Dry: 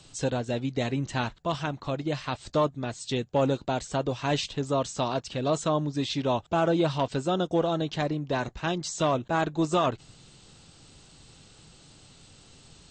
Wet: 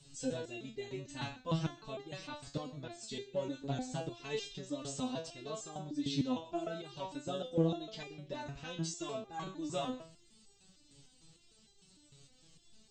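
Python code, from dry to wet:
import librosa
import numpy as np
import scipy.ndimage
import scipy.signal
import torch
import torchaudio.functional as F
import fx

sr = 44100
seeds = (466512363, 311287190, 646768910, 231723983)

p1 = fx.peak_eq(x, sr, hz=1100.0, db=-8.5, octaves=2.2)
p2 = p1 + 10.0 ** (-15.5 / 20.0) * np.pad(p1, (int(126 * sr / 1000.0), 0))[:len(p1)]
p3 = fx.rider(p2, sr, range_db=10, speed_s=0.5)
p4 = p2 + (p3 * librosa.db_to_amplitude(3.0))
p5 = fx.resonator_held(p4, sr, hz=6.6, low_hz=140.0, high_hz=400.0)
y = p5 * librosa.db_to_amplitude(-2.5)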